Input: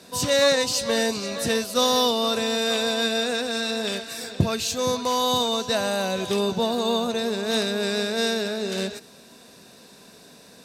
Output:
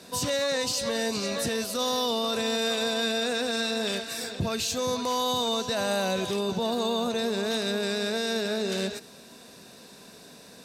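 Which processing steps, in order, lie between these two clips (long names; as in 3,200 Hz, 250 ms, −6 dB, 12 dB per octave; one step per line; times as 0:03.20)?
brickwall limiter −19 dBFS, peak gain reduction 10.5 dB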